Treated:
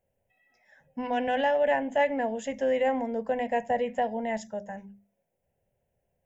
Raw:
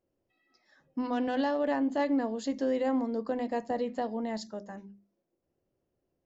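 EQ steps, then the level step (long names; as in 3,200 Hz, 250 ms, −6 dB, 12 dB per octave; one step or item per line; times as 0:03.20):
dynamic equaliser 2,500 Hz, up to +4 dB, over −49 dBFS, Q 1.2
phaser with its sweep stopped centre 1,200 Hz, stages 6
+7.0 dB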